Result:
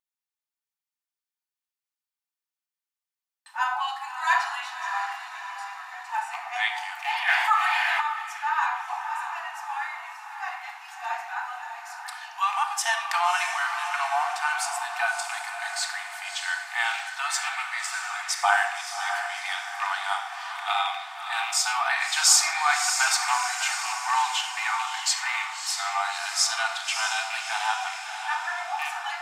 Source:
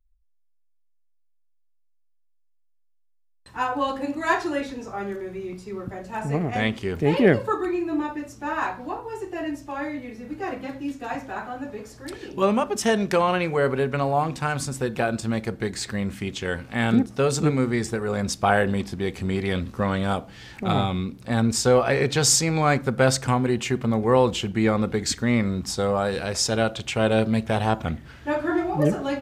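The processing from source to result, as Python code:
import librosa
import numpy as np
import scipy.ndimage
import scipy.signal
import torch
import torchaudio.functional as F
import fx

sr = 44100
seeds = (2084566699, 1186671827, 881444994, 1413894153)

p1 = fx.rattle_buzz(x, sr, strikes_db=-21.0, level_db=-22.0)
p2 = fx.brickwall_highpass(p1, sr, low_hz=690.0)
p3 = p2 + fx.echo_diffused(p2, sr, ms=616, feedback_pct=51, wet_db=-7, dry=0)
p4 = fx.room_shoebox(p3, sr, seeds[0], volume_m3=3000.0, walls='furnished', distance_m=2.6)
y = fx.env_flatten(p4, sr, amount_pct=50, at=(7.28, 8.0), fade=0.02)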